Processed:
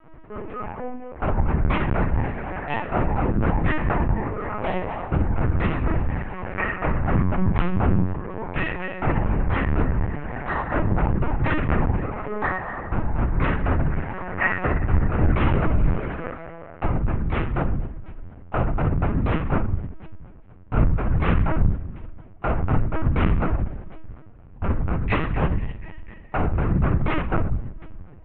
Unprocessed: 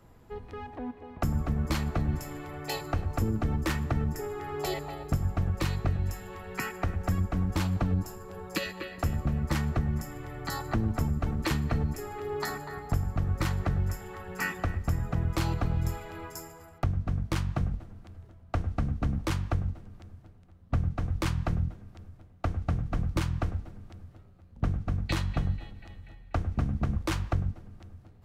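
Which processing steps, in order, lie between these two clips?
low-pass filter 2,500 Hz 24 dB per octave
low-shelf EQ 420 Hz −6.5 dB
convolution reverb RT60 0.50 s, pre-delay 9 ms, DRR −3.5 dB
linear-prediction vocoder at 8 kHz pitch kept
level +4.5 dB

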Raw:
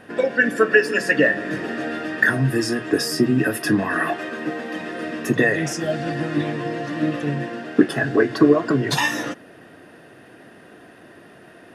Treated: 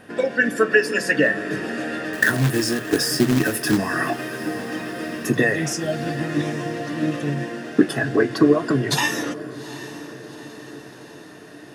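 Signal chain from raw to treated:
bass and treble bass +2 dB, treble +5 dB
0:02.13–0:03.78: log-companded quantiser 4 bits
on a send: feedback delay with all-pass diffusion 808 ms, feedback 58%, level −15.5 dB
on the sum: level −1.5 dB

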